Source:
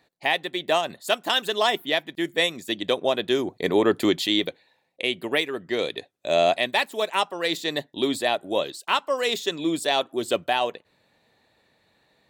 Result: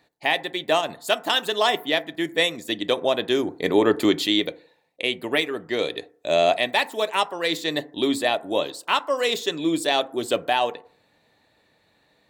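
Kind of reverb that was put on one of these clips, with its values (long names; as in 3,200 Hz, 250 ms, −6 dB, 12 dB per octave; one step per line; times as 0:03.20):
feedback delay network reverb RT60 0.52 s, low-frequency decay 0.85×, high-frequency decay 0.3×, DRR 13 dB
level +1 dB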